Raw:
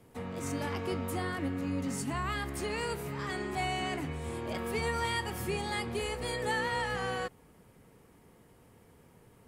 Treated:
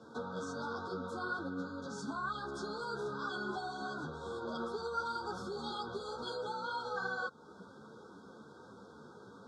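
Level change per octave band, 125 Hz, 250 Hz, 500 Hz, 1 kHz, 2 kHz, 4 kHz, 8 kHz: -12.5 dB, -6.5 dB, -4.5 dB, -3.0 dB, -4.5 dB, -7.0 dB, -13.0 dB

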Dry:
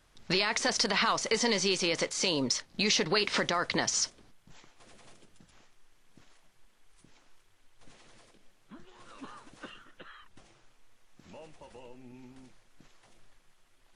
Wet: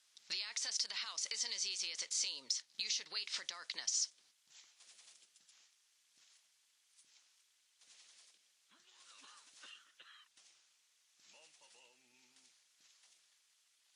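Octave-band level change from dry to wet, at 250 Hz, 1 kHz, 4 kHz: -35.5 dB, -24.0 dB, -8.5 dB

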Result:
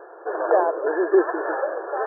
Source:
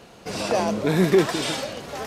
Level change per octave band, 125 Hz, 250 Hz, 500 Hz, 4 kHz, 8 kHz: under -40 dB, -4.0 dB, +2.5 dB, under -40 dB, under -40 dB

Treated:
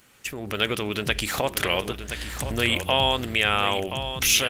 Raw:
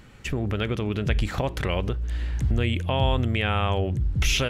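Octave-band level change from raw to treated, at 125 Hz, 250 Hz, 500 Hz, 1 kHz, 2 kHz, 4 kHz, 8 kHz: -9.0 dB, -2.5 dB, +1.5 dB, +3.5 dB, +6.0 dB, +7.5 dB, +9.5 dB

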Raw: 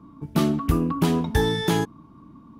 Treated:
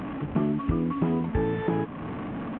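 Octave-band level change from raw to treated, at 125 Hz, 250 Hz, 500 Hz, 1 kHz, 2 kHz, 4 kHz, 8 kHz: -4.0 dB, -2.5 dB, -3.0 dB, -4.5 dB, -7.5 dB, -19.0 dB, under -40 dB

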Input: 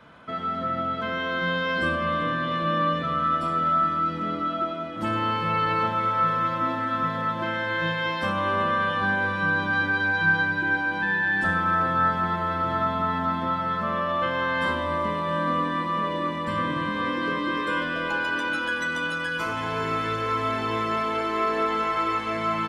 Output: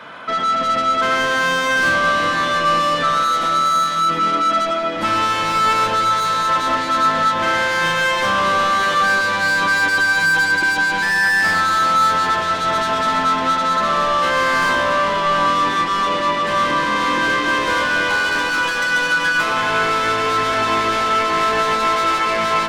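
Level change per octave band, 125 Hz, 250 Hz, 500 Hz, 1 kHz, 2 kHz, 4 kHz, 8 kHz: -1.0 dB, +2.0 dB, +7.0 dB, +8.5 dB, +9.0 dB, +12.5 dB, no reading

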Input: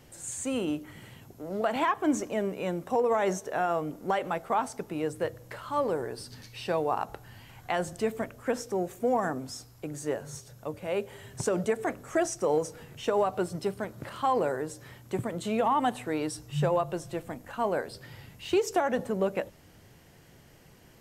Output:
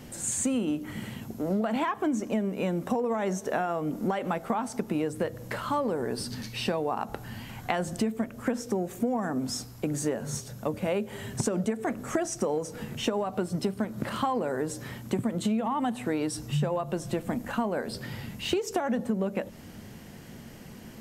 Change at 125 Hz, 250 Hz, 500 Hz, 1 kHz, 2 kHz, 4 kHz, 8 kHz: +4.0 dB, +4.5 dB, -2.0 dB, -2.5 dB, -0.5 dB, +4.0 dB, +4.0 dB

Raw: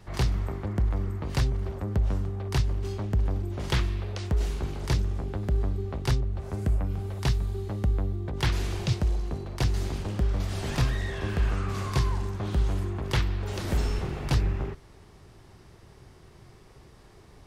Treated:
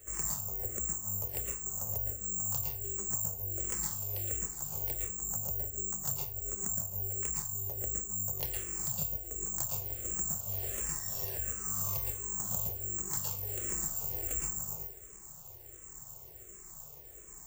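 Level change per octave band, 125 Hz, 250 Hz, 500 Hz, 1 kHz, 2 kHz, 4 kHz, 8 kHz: -16.5 dB, -15.5 dB, -12.0 dB, -12.0 dB, -13.5 dB, -12.5 dB, +13.5 dB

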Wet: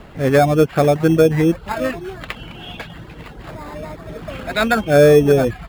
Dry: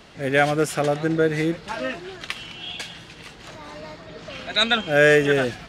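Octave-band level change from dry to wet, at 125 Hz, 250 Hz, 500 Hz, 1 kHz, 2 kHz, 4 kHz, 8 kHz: +9.5 dB, +8.0 dB, +7.0 dB, +5.5 dB, -2.0 dB, -5.0 dB, +2.0 dB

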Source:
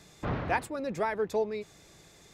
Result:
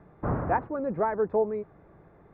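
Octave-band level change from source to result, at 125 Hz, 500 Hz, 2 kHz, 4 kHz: +4.0 dB, +4.0 dB, -3.5 dB, under -25 dB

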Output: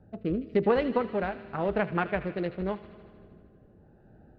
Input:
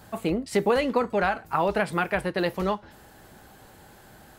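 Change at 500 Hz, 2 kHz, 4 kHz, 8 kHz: -3.0 dB, -6.5 dB, -10.0 dB, under -30 dB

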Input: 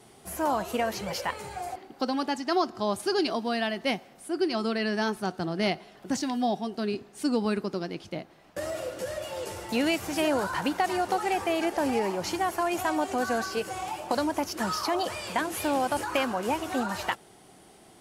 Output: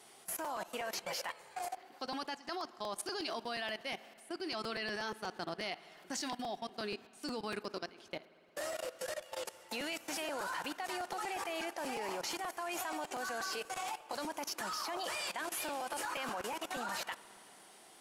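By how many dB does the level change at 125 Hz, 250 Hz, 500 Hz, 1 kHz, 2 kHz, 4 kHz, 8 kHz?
-17.0 dB, -16.5 dB, -12.5 dB, -10.5 dB, -7.5 dB, -6.5 dB, -4.5 dB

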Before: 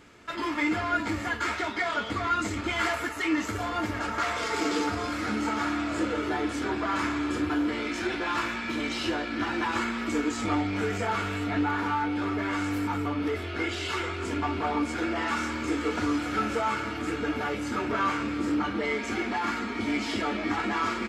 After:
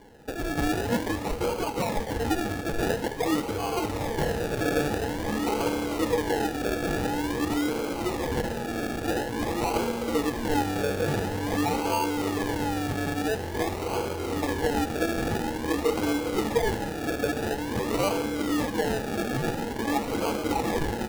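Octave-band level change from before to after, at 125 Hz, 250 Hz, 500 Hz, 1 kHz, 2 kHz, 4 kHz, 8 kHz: +5.0 dB, +0.5 dB, +6.0 dB, -0.5 dB, -3.0 dB, 0.0 dB, +4.5 dB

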